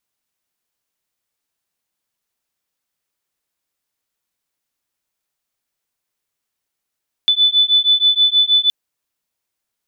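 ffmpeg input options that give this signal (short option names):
-f lavfi -i "aevalsrc='0.2*(sin(2*PI*3490*t)+sin(2*PI*3496.3*t))':d=1.42:s=44100"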